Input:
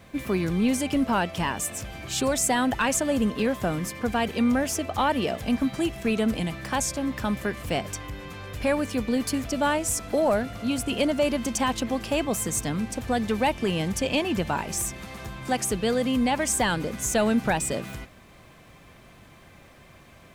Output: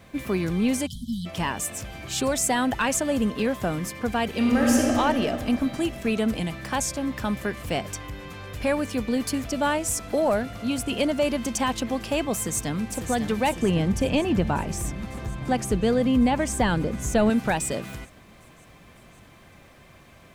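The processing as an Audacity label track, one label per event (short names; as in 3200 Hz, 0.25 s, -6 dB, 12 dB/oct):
0.860000	1.260000	spectral delete 250–3000 Hz
4.290000	4.940000	reverb throw, RT60 2.9 s, DRR -2.5 dB
12.350000	13.000000	echo throw 0.55 s, feedback 75%, level -8.5 dB
13.620000	17.300000	tilt -2 dB/oct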